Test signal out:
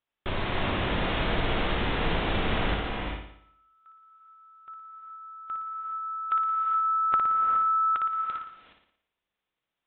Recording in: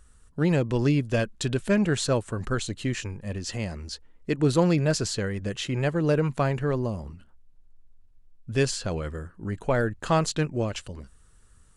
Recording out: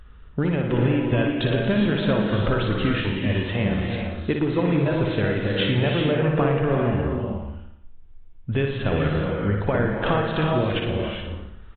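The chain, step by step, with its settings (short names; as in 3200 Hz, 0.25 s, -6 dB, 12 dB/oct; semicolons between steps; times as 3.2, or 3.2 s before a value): compressor 16:1, threshold -28 dBFS; flutter echo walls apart 9.9 m, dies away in 0.67 s; non-linear reverb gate 0.44 s rising, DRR 2 dB; downsampling 8000 Hz; gain +8.5 dB; AAC 32 kbps 48000 Hz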